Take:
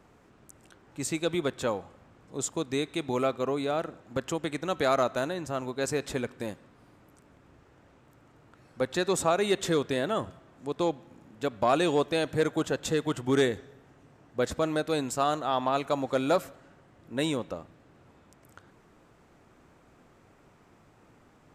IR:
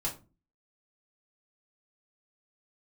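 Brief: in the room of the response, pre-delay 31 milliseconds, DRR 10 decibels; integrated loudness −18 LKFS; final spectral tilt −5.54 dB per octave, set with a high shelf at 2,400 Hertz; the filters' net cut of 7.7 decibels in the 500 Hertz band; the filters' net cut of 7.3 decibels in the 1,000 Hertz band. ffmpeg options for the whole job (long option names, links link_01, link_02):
-filter_complex "[0:a]equalizer=frequency=500:width_type=o:gain=-8,equalizer=frequency=1000:width_type=o:gain=-5.5,highshelf=frequency=2400:gain=-8,asplit=2[link_01][link_02];[1:a]atrim=start_sample=2205,adelay=31[link_03];[link_02][link_03]afir=irnorm=-1:irlink=0,volume=-13.5dB[link_04];[link_01][link_04]amix=inputs=2:normalize=0,volume=16.5dB"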